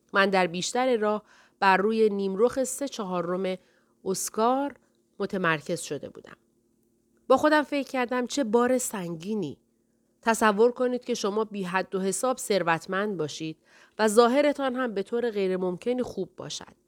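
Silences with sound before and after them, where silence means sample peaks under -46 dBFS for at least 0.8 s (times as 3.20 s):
6.34–7.29 s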